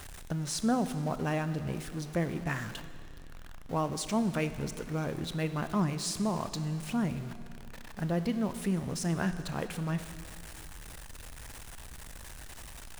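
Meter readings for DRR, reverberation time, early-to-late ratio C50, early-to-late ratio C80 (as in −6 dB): 10.5 dB, 2.5 s, 11.5 dB, 12.0 dB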